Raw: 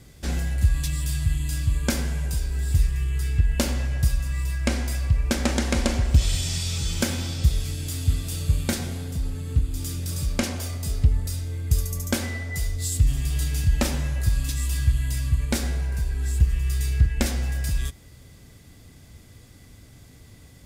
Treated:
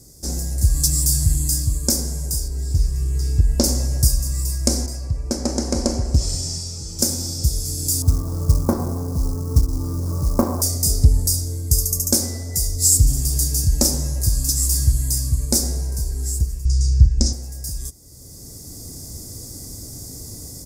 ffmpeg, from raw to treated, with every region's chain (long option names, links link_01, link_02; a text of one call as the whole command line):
ffmpeg -i in.wav -filter_complex "[0:a]asettb=1/sr,asplit=3[link_01][link_02][link_03];[link_01]atrim=end=2.484[link_04];[link_02]atrim=start=2.48:end=3.64,asetpts=PTS-STARTPTS,afade=type=in:duration=0.004:curve=qsin,afade=type=out:start_time=1.156:duration=0.004:curve=qsin,acrossover=split=6000[link_05][link_06];[link_06]acompressor=threshold=-50dB:ratio=4:attack=1:release=60[link_07];[link_05][link_07]amix=inputs=2:normalize=0,highshelf=frequency=5500:gain=-6.5[link_08];[link_03]atrim=start=3.636[link_09];[link_04][link_08]acrossfade=duration=0.004:curve1=hsin:curve2=qsin[link_10];[link_10][link_09]acrossfade=duration=0.004:curve1=qsin:curve2=hsin,asettb=1/sr,asplit=3[link_11][link_12][link_13];[link_11]atrim=end=4.864[link_14];[link_12]atrim=start=4.86:end=6.99,asetpts=PTS-STARTPTS,afade=type=in:duration=0.004:curve=qsin,afade=type=out:start_time=2.126:duration=0.004:curve=qsin,highpass=frequency=770:poles=1,aemphasis=mode=reproduction:type=riaa,bandreject=frequency=3600:width=11[link_15];[link_13]atrim=start=6.986[link_16];[link_14][link_15]acrossfade=duration=0.004:curve1=hsin:curve2=qsin[link_17];[link_17][link_16]acrossfade=duration=0.004:curve1=qsin:curve2=hsin,asettb=1/sr,asplit=3[link_18][link_19][link_20];[link_18]atrim=end=8.024[link_21];[link_19]atrim=start=8.02:end=10.62,asetpts=PTS-STARTPTS,afade=type=in:duration=0.004:curve=qsin,afade=type=out:start_time=2.596:duration=0.004:curve=qsin,lowpass=frequency=1100:width_type=q:width=5.8,acrusher=bits=7:mode=log:mix=0:aa=0.000001[link_22];[link_20]atrim=start=10.616[link_23];[link_21][link_22]acrossfade=duration=0.004:curve1=hsin:curve2=qsin[link_24];[link_24][link_23]acrossfade=duration=0.004:curve1=qsin:curve2=hsin,asettb=1/sr,asplit=3[link_25][link_26][link_27];[link_25]atrim=end=16.654[link_28];[link_26]atrim=start=16.65:end=17.33,asetpts=PTS-STARTPTS,afade=type=in:duration=0.004:curve=qsin,afade=type=out:start_time=0.676:duration=0.004:curve=qsin,lowpass=frequency=6000:width=0.5412,lowpass=frequency=6000:width=1.3066,bass=frequency=250:gain=14,treble=frequency=4000:gain=11[link_29];[link_27]atrim=start=17.326[link_30];[link_28][link_29]acrossfade=duration=0.004:curve1=hsin:curve2=qsin[link_31];[link_31][link_30]acrossfade=duration=0.004:curve1=qsin:curve2=hsin,firequalizer=gain_entry='entry(210,0);entry(310,4);entry(1600,-13);entry(3000,-18);entry(5100,12)':delay=0.05:min_phase=1,dynaudnorm=framelen=450:gausssize=3:maxgain=11.5dB,volume=-1dB" out.wav